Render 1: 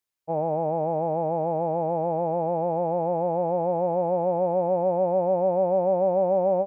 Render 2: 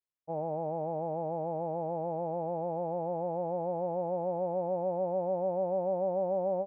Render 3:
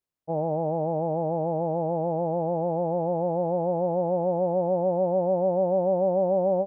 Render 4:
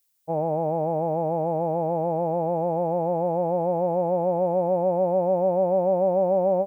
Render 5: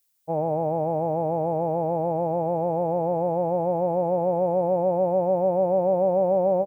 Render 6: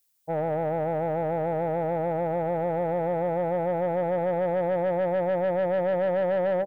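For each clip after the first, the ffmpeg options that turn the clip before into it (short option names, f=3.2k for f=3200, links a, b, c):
-af "lowpass=f=1.5k:p=1,volume=-8dB"
-af "tiltshelf=f=780:g=4.5,volume=6dB"
-af "crystalizer=i=8.5:c=0"
-filter_complex "[0:a]asplit=4[a][b][c][d];[b]adelay=93,afreqshift=-32,volume=-22dB[e];[c]adelay=186,afreqshift=-64,volume=-29.5dB[f];[d]adelay=279,afreqshift=-96,volume=-37.1dB[g];[a][e][f][g]amix=inputs=4:normalize=0"
-af "asoftclip=type=tanh:threshold=-20.5dB"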